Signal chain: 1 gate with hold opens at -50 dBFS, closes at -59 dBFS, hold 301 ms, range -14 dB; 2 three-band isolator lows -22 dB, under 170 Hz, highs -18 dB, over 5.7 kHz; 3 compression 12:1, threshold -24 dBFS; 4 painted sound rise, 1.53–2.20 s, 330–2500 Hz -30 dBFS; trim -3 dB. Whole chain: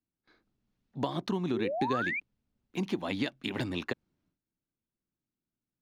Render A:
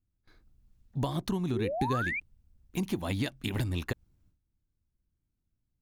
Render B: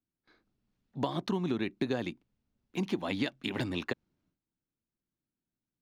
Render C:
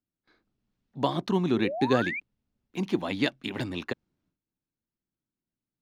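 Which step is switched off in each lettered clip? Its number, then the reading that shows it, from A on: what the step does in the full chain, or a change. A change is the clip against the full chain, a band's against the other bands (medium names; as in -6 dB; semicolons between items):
2, 8 kHz band +7.5 dB; 4, 1 kHz band -5.0 dB; 3, mean gain reduction 4.0 dB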